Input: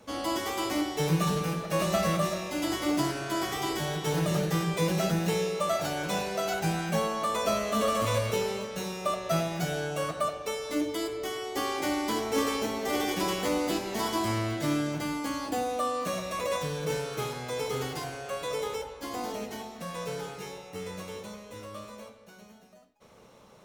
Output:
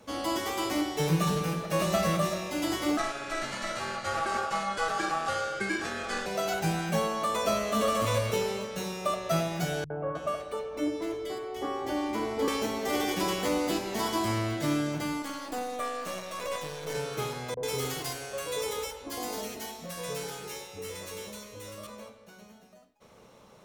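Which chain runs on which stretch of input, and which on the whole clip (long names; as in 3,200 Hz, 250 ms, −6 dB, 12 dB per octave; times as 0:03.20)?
0:02.97–0:06.26: low-pass filter 9,300 Hz 24 dB per octave + ring modulation 980 Hz
0:09.84–0:12.48: high-shelf EQ 2,900 Hz −11 dB + three-band delay without the direct sound lows, mids, highs 60/310 ms, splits 150/1,600 Hz
0:15.22–0:16.95: gain on one half-wave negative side −12 dB + low-shelf EQ 150 Hz −10.5 dB
0:17.54–0:21.87: high-shelf EQ 5,400 Hz +9 dB + three-band delay without the direct sound lows, mids, highs 30/90 ms, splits 170/910 Hz
whole clip: no processing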